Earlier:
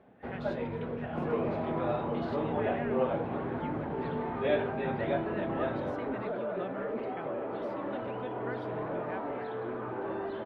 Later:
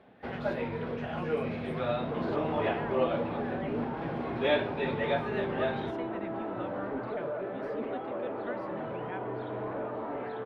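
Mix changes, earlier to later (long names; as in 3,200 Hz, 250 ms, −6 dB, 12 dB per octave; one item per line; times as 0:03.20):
first sound: remove head-to-tape spacing loss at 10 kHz 28 dB
second sound: entry +0.85 s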